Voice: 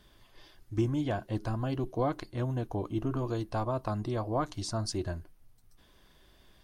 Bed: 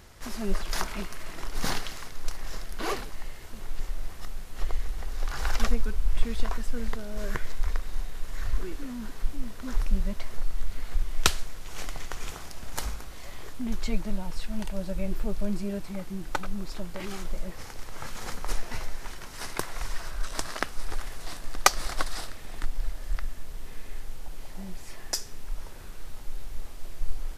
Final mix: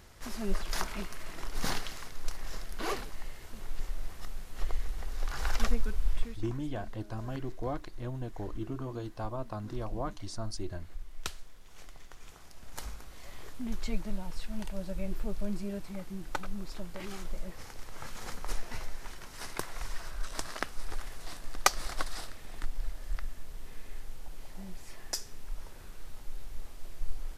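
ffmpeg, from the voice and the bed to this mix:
-filter_complex "[0:a]adelay=5650,volume=0.501[s0];[1:a]volume=2.24,afade=t=out:st=6.07:d=0.32:silence=0.251189,afade=t=in:st=12.24:d=1.16:silence=0.298538[s1];[s0][s1]amix=inputs=2:normalize=0"

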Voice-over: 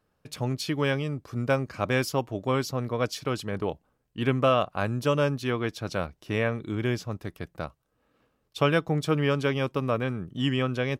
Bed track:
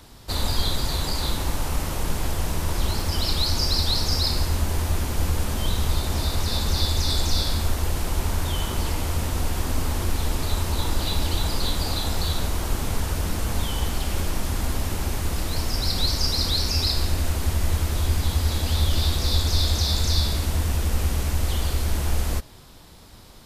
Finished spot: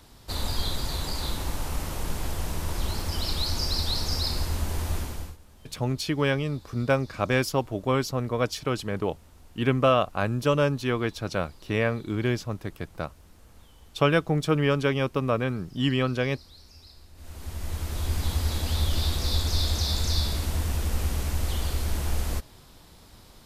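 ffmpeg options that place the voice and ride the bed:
-filter_complex "[0:a]adelay=5400,volume=1.19[s0];[1:a]volume=8.91,afade=t=out:st=4.96:d=0.41:silence=0.0707946,afade=t=in:st=17.14:d=1.14:silence=0.0630957[s1];[s0][s1]amix=inputs=2:normalize=0"

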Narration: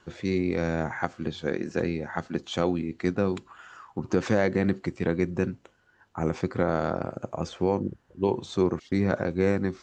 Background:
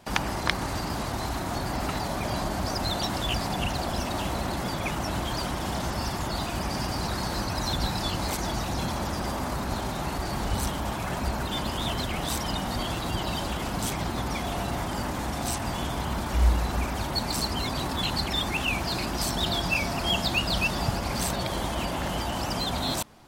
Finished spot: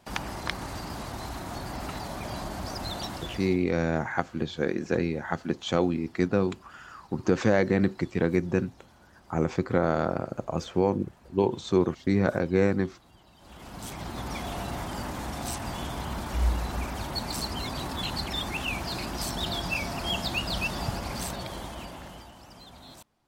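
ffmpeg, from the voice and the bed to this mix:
-filter_complex "[0:a]adelay=3150,volume=1.12[s0];[1:a]volume=7.5,afade=t=out:st=3.04:d=0.6:silence=0.0841395,afade=t=in:st=13.38:d=0.99:silence=0.0668344,afade=t=out:st=20.98:d=1.37:silence=0.158489[s1];[s0][s1]amix=inputs=2:normalize=0"

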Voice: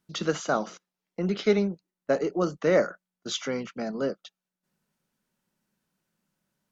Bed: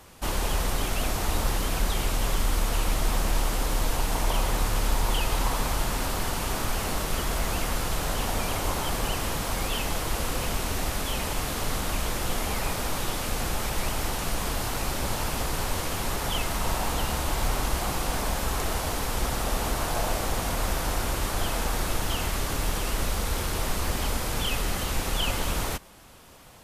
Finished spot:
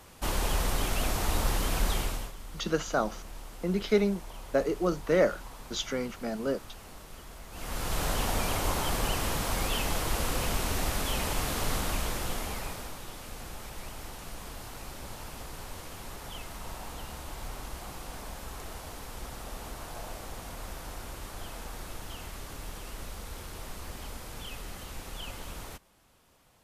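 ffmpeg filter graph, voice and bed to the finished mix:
-filter_complex "[0:a]adelay=2450,volume=0.794[s0];[1:a]volume=5.96,afade=t=out:st=1.93:d=0.39:silence=0.141254,afade=t=in:st=7.51:d=0.51:silence=0.133352,afade=t=out:st=11.74:d=1.24:silence=0.251189[s1];[s0][s1]amix=inputs=2:normalize=0"

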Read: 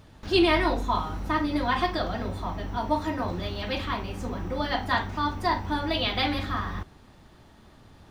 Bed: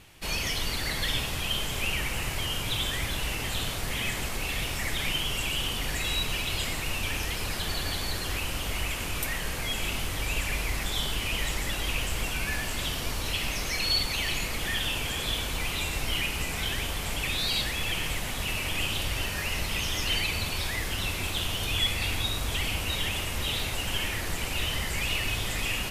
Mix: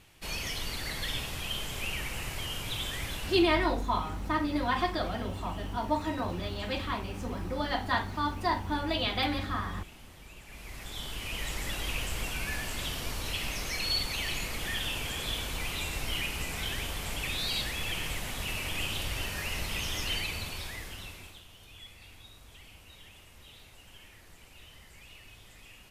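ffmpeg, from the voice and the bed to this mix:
-filter_complex "[0:a]adelay=3000,volume=0.668[s0];[1:a]volume=3.98,afade=t=out:st=3.15:d=0.35:silence=0.158489,afade=t=in:st=10.45:d=1.26:silence=0.133352,afade=t=out:st=19.98:d=1.45:silence=0.112202[s1];[s0][s1]amix=inputs=2:normalize=0"

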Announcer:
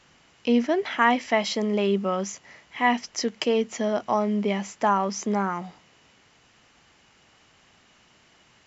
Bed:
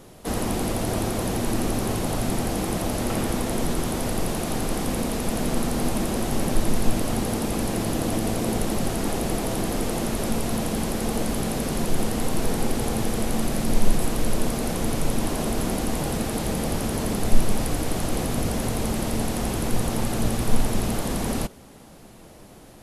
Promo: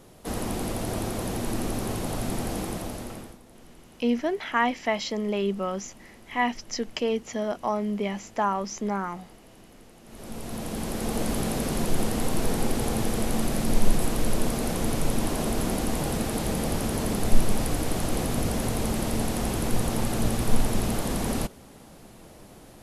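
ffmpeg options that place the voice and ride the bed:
-filter_complex "[0:a]adelay=3550,volume=0.668[s0];[1:a]volume=10,afade=t=out:st=2.57:d=0.81:silence=0.0841395,afade=t=in:st=10.04:d=1.27:silence=0.0595662[s1];[s0][s1]amix=inputs=2:normalize=0"

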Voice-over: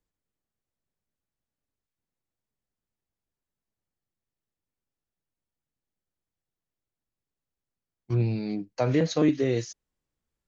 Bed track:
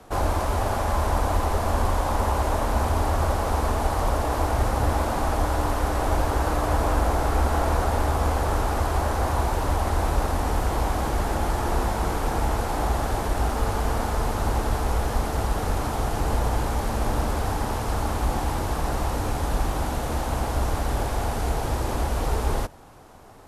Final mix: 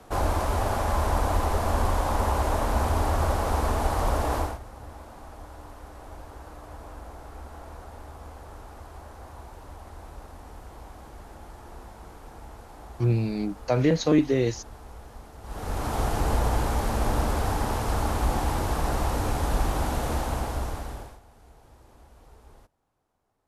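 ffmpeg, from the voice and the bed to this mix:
-filter_complex "[0:a]adelay=4900,volume=1.26[s0];[1:a]volume=7.94,afade=t=out:st=4.36:d=0.23:silence=0.11885,afade=t=in:st=15.42:d=0.58:silence=0.105925,afade=t=out:st=20.09:d=1.11:silence=0.0421697[s1];[s0][s1]amix=inputs=2:normalize=0"

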